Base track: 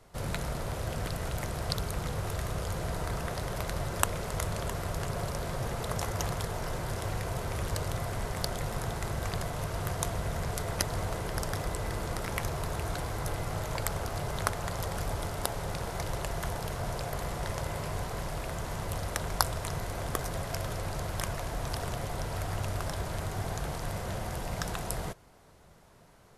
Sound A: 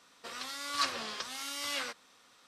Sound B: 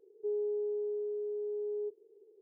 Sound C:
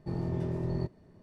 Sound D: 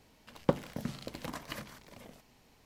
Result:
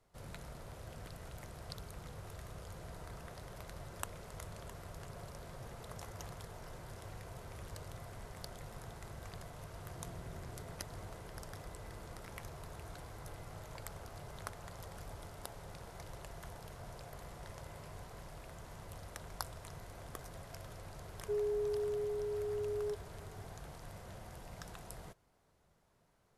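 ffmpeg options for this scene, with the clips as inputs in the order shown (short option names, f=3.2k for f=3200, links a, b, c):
-filter_complex "[0:a]volume=-15dB[a];[3:a]acompressor=threshold=-48dB:ratio=6:attack=3.2:release=140:knee=1:detection=peak,atrim=end=1.22,asetpts=PTS-STARTPTS,volume=-3.5dB,afade=t=in:d=0.004:c=hsin,afade=t=out:st=1.216:d=0.004:c=hsin,adelay=9890[b];[2:a]atrim=end=2.41,asetpts=PTS-STARTPTS,volume=-1.5dB,afade=t=in:d=0.004:c=hsin,afade=t=out:st=2.406:d=0.004:c=hsin,adelay=21050[c];[a][b][c]amix=inputs=3:normalize=0"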